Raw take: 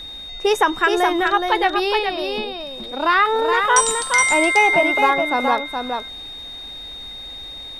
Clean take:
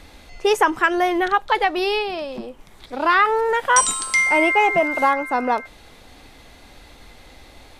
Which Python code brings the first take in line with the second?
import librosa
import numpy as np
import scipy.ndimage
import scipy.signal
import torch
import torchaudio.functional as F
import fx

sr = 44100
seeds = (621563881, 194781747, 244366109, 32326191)

y = fx.notch(x, sr, hz=3700.0, q=30.0)
y = fx.fix_echo_inverse(y, sr, delay_ms=420, level_db=-5.0)